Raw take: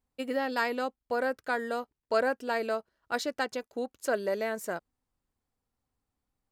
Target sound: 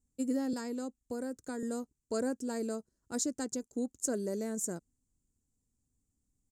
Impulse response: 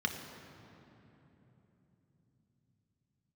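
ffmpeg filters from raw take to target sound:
-filter_complex "[0:a]firequalizer=gain_entry='entry(260,0);entry(630,-17);entry(2800,-24);entry(7000,8);entry(13000,-9)':delay=0.05:min_phase=1,asettb=1/sr,asplit=3[link_01][link_02][link_03];[link_01]atrim=end=0.534[link_04];[link_02]atrim=start=0.53:end=1.63,asetpts=PTS-STARTPTS,afade=type=in:duration=0.004:curve=qsin,afade=type=out:start_time=1.096:duration=0.004:curve=qsin,acrossover=split=360|6700[link_05][link_06][link_07];[link_05]acompressor=threshold=-44dB:ratio=4[link_08];[link_06]acompressor=threshold=-44dB:ratio=4[link_09];[link_07]acompressor=threshold=-60dB:ratio=4[link_10];[link_08][link_09][link_10]amix=inputs=3:normalize=0[link_11];[link_03]atrim=start=1.626[link_12];[link_04][link_11]acrossfade=duration=0.004:curve1=hsin:curve2=qsin[link_13];[link_13][link_12]acrossfade=duration=0.004:curve1=qsin:curve2=hsin,volume=4.5dB"

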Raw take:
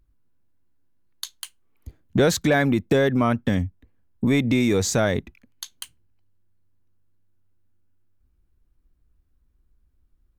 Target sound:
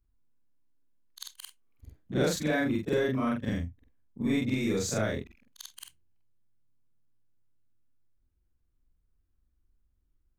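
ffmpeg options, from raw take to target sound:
ffmpeg -i in.wav -af "afftfilt=real='re':imag='-im':win_size=4096:overlap=0.75,adynamicequalizer=threshold=0.00501:dfrequency=810:dqfactor=3.2:tfrequency=810:tqfactor=3.2:attack=5:release=100:ratio=0.375:range=3.5:mode=cutabove:tftype=bell,volume=-4dB" out.wav

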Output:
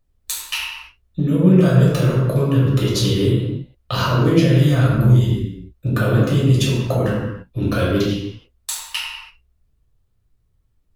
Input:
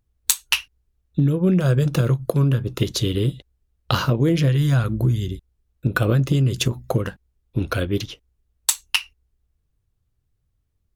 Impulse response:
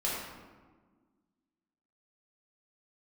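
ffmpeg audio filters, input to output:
-filter_complex "[0:a]alimiter=limit=-10.5dB:level=0:latency=1:release=68[link_01];[1:a]atrim=start_sample=2205,afade=type=out:start_time=0.39:duration=0.01,atrim=end_sample=17640[link_02];[link_01][link_02]afir=irnorm=-1:irlink=0,volume=-1dB"

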